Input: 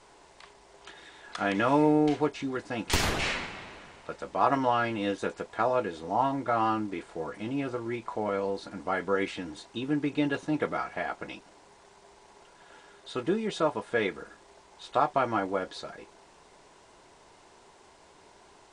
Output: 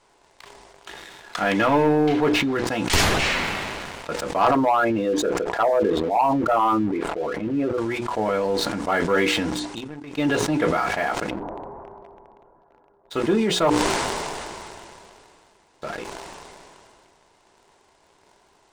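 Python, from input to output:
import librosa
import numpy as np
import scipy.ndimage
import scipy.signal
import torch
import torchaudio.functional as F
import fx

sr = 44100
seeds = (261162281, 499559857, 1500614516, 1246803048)

y = fx.lowpass(x, sr, hz=4100.0, slope=12, at=(1.67, 2.67))
y = fx.envelope_sharpen(y, sr, power=2.0, at=(4.51, 7.78))
y = fx.lowpass(y, sr, hz=1000.0, slope=24, at=(11.29, 13.1), fade=0.02)
y = fx.edit(y, sr, fx.fade_down_up(start_s=9.39, length_s=0.88, db=-18.5, fade_s=0.22),
    fx.room_tone_fill(start_s=13.7, length_s=2.12), tone=tone)
y = fx.hum_notches(y, sr, base_hz=60, count=8)
y = fx.leveller(y, sr, passes=2)
y = fx.sustainer(y, sr, db_per_s=22.0)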